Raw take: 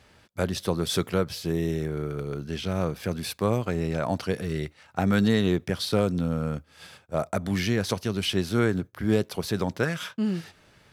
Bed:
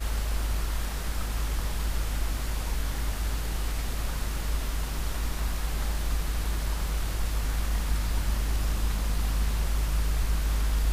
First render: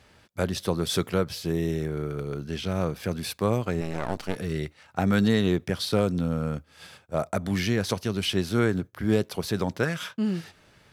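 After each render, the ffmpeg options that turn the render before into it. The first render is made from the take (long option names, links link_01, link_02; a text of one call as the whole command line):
ffmpeg -i in.wav -filter_complex "[0:a]asettb=1/sr,asplit=3[link_01][link_02][link_03];[link_01]atrim=end=3.814[link_04];[link_02]atrim=start=3.81:end=4.36,asetpts=PTS-STARTPTS,afade=type=in:duration=0.004:curve=qsin,afade=type=out:start_time=0.546:duration=0.004:curve=qsin,aeval=exprs='max(val(0),0)':channel_layout=same[link_05];[link_03]atrim=start=4.356[link_06];[link_04][link_05]acrossfade=duration=0.004:curve1=hsin:curve2=qsin[link_07];[link_07][link_06]acrossfade=duration=0.004:curve1=qsin:curve2=hsin" out.wav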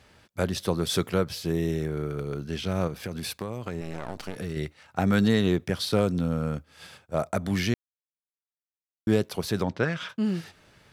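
ffmpeg -i in.wav -filter_complex "[0:a]asettb=1/sr,asplit=3[link_01][link_02][link_03];[link_01]atrim=end=2.874[link_04];[link_02]atrim=start=2.87:end=4.57,asetpts=PTS-STARTPTS,afade=type=in:duration=0.004:curve=qsin,afade=type=out:start_time=1.696:duration=0.004:curve=qsin,acompressor=threshold=-28dB:ratio=6:attack=3.2:release=140:knee=1:detection=peak[link_05];[link_03]atrim=start=4.566[link_06];[link_04][link_05]acrossfade=duration=0.004:curve1=hsin:curve2=qsin[link_07];[link_07][link_06]acrossfade=duration=0.004:curve1=qsin:curve2=hsin,asplit=3[link_08][link_09][link_10];[link_08]afade=type=out:start_time=9.62:duration=0.02[link_11];[link_09]lowpass=4400,afade=type=in:start_time=9.62:duration=0.02,afade=type=out:start_time=10.08:duration=0.02[link_12];[link_10]afade=type=in:start_time=10.08:duration=0.02[link_13];[link_11][link_12][link_13]amix=inputs=3:normalize=0,asplit=3[link_14][link_15][link_16];[link_14]atrim=end=7.74,asetpts=PTS-STARTPTS,afade=type=out:start_time=7.736:duration=0.004:curve=hsin[link_17];[link_15]atrim=start=7.74:end=9.07,asetpts=PTS-STARTPTS,volume=0[link_18];[link_16]atrim=start=9.07,asetpts=PTS-STARTPTS,afade=type=in:duration=0.004:curve=hsin[link_19];[link_17][link_18][link_19]concat=n=3:v=0:a=1" out.wav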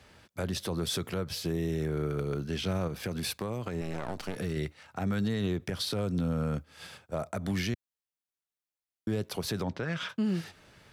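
ffmpeg -i in.wav -filter_complex "[0:a]acrossover=split=120[link_01][link_02];[link_02]acompressor=threshold=-25dB:ratio=6[link_03];[link_01][link_03]amix=inputs=2:normalize=0,alimiter=limit=-22.5dB:level=0:latency=1:release=86" out.wav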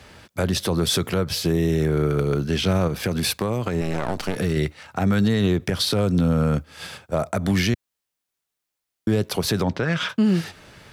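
ffmpeg -i in.wav -af "volume=10.5dB" out.wav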